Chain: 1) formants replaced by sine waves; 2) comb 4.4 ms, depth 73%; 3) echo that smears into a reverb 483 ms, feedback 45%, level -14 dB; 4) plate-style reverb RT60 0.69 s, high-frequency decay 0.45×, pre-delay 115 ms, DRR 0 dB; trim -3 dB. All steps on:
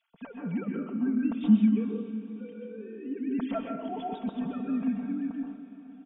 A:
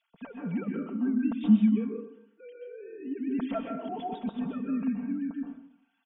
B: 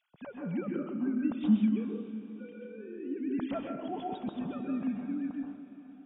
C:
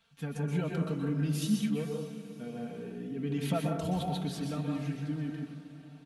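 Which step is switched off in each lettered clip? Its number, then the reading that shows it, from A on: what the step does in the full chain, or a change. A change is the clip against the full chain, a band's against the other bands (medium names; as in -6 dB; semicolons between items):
3, momentary loudness spread change +3 LU; 2, 500 Hz band +1.5 dB; 1, 250 Hz band -8.0 dB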